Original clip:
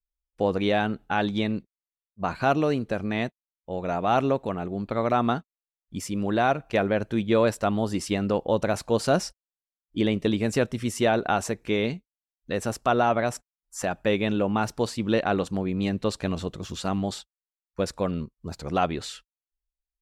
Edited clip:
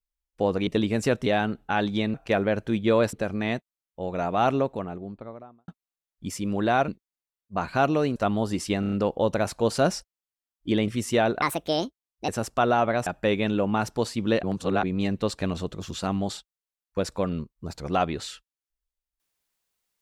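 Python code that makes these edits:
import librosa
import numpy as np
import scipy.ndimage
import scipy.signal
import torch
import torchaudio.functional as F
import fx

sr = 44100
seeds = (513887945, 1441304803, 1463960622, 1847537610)

y = fx.studio_fade_out(x, sr, start_s=4.11, length_s=1.27)
y = fx.edit(y, sr, fx.swap(start_s=1.55, length_s=1.28, other_s=6.58, other_length_s=0.99),
    fx.stutter(start_s=8.21, slice_s=0.03, count=5),
    fx.move(start_s=10.17, length_s=0.59, to_s=0.67),
    fx.speed_span(start_s=11.3, length_s=1.27, speed=1.47),
    fx.cut(start_s=13.35, length_s=0.53),
    fx.reverse_span(start_s=15.25, length_s=0.4), tone=tone)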